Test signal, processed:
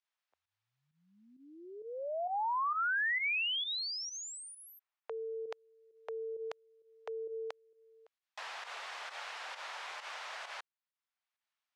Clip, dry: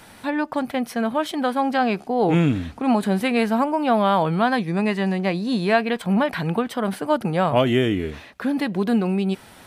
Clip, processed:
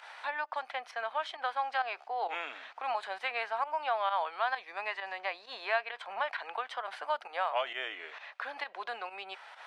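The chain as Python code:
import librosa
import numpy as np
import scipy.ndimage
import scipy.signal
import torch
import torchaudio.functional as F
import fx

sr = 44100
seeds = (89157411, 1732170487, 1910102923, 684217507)

y = scipy.signal.sosfilt(scipy.signal.butter(4, 680.0, 'highpass', fs=sr, output='sos'), x)
y = fx.tilt_eq(y, sr, slope=4.0)
y = fx.volume_shaper(y, sr, bpm=132, per_beat=1, depth_db=-11, release_ms=91.0, shape='fast start')
y = fx.spacing_loss(y, sr, db_at_10k=38)
y = fx.band_squash(y, sr, depth_pct=40)
y = F.gain(torch.from_numpy(y), -3.5).numpy()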